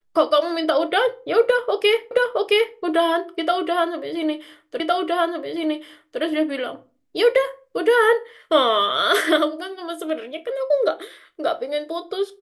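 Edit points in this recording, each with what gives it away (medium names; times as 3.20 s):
2.11 s: repeat of the last 0.67 s
4.80 s: repeat of the last 1.41 s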